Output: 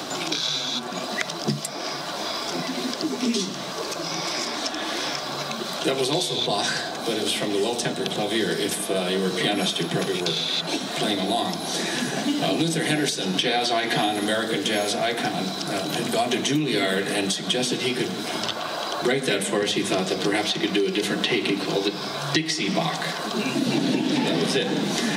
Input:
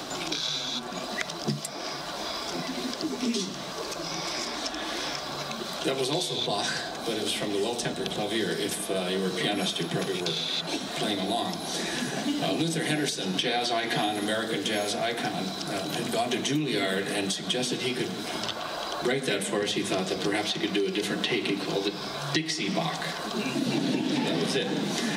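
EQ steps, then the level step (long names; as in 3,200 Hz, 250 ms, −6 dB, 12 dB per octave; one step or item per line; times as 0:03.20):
high-pass filter 99 Hz
+4.5 dB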